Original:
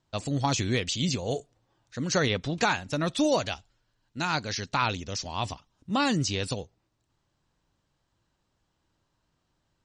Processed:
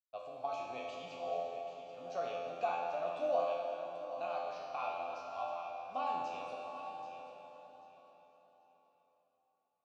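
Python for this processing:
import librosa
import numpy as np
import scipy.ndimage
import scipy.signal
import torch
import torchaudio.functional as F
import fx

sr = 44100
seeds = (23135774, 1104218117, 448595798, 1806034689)

y = fx.delta_hold(x, sr, step_db=-40.5)
y = fx.vowel_filter(y, sr, vowel='a')
y = fx.peak_eq(y, sr, hz=590.0, db=6.5, octaves=0.82)
y = fx.comb_fb(y, sr, f0_hz=86.0, decay_s=0.85, harmonics='all', damping=0.0, mix_pct=90)
y = fx.echo_feedback(y, sr, ms=786, feedback_pct=22, wet_db=-11.5)
y = fx.rev_plate(y, sr, seeds[0], rt60_s=4.5, hf_ratio=0.85, predelay_ms=0, drr_db=1.0)
y = F.gain(torch.from_numpy(y), 7.0).numpy()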